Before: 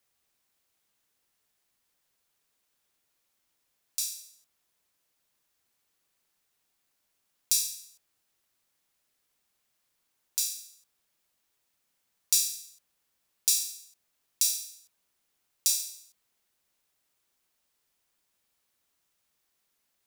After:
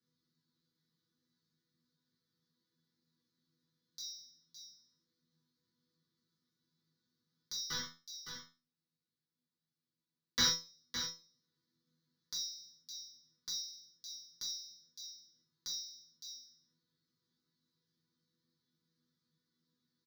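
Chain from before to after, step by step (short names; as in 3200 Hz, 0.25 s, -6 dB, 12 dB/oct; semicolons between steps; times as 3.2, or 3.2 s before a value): HPF 140 Hz; band shelf 1300 Hz -15.5 dB 2.9 oct; 7.7–10.5 sample leveller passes 5; echo 0.562 s -11 dB; in parallel at +1.5 dB: compressor, threshold -32 dBFS, peak gain reduction 18 dB; on the sum: air absorption 310 m; fixed phaser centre 2600 Hz, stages 6; resonator bank E3 fifth, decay 0.3 s; on a send at -4 dB: reverb, pre-delay 3 ms; on the sum: gain +17 dB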